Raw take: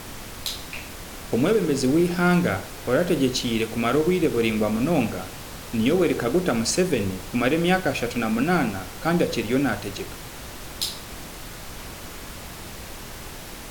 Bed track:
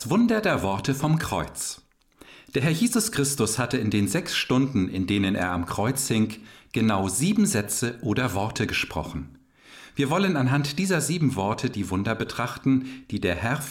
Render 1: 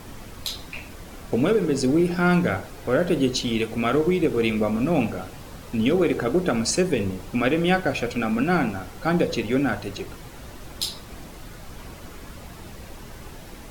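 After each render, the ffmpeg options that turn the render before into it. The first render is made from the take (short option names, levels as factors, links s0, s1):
-af "afftdn=nr=8:nf=-38"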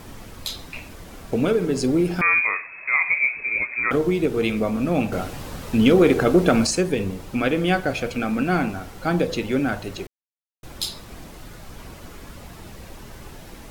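-filter_complex "[0:a]asettb=1/sr,asplit=3[s0][s1][s2];[s0]atrim=end=2.214[s3];[s1]atrim=start=2.21:end=3.91,asetpts=PTS-STARTPTS,afade=t=in:d=0.004:c=qsin,afade=t=out:st=1.696:d=0.004:c=qsin,lowpass=f=2200:t=q:w=0.5098,lowpass=f=2200:t=q:w=0.6013,lowpass=f=2200:t=q:w=0.9,lowpass=f=2200:t=q:w=2.563,afreqshift=-2600[s4];[s2]atrim=start=3.906[s5];[s3][s4]acrossfade=d=0.004:c1=hsin:c2=qsin[s6];[s6][s5]acrossfade=d=0.004:c1=qsin:c2=hsin,asettb=1/sr,asplit=3[s7][s8][s9];[s7]atrim=end=5.124[s10];[s8]atrim=start=5.12:end=6.67,asetpts=PTS-STARTPTS,afade=t=in:d=0.004:c=qsin,afade=t=out:st=1.546:d=0.004:c=qsin,acontrast=50[s11];[s9]atrim=start=6.666[s12];[s10][s11]acrossfade=d=0.004:c1=hsin:c2=qsin[s13];[s13][s12]acrossfade=d=0.004:c1=qsin:c2=hsin,asplit=3[s14][s15][s16];[s14]atrim=end=10.07,asetpts=PTS-STARTPTS,afade=t=out:st=10.066:d=0.004:c=hsin[s17];[s15]atrim=start=10.07:end=10.63,asetpts=PTS-STARTPTS,volume=0[s18];[s16]atrim=start=10.63,asetpts=PTS-STARTPTS,afade=t=in:d=0.004:c=hsin[s19];[s17][s18][s19]concat=n=3:v=0:a=1"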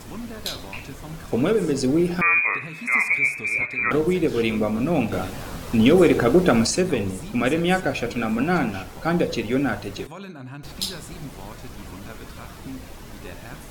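-filter_complex "[1:a]volume=0.168[s0];[0:a][s0]amix=inputs=2:normalize=0"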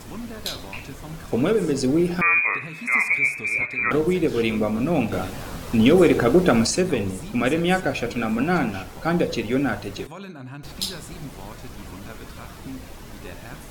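-af anull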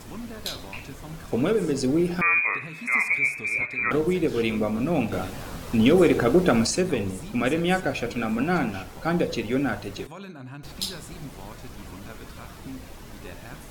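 -af "volume=0.75"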